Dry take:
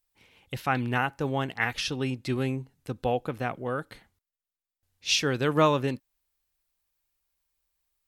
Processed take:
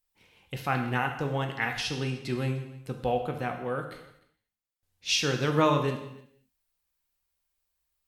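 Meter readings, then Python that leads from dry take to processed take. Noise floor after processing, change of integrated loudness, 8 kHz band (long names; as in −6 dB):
−82 dBFS, −1.0 dB, −1.0 dB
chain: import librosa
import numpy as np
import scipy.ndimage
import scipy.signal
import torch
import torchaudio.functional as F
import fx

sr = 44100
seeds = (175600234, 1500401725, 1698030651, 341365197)

y = x + 10.0 ** (-22.0 / 20.0) * np.pad(x, (int(301 * sr / 1000.0), 0))[:len(x)]
y = fx.rev_gated(y, sr, seeds[0], gate_ms=270, shape='falling', drr_db=4.0)
y = y * 10.0 ** (-2.5 / 20.0)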